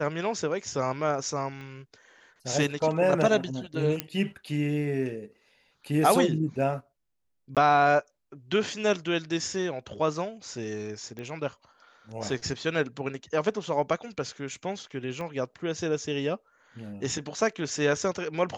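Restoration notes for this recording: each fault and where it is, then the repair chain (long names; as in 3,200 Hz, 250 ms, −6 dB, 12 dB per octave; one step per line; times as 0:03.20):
0:01.61: click −31 dBFS
0:04.00: click −11 dBFS
0:07.55–0:07.57: drop-out 17 ms
0:11.19: click −26 dBFS
0:15.21: click −24 dBFS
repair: click removal
repair the gap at 0:07.55, 17 ms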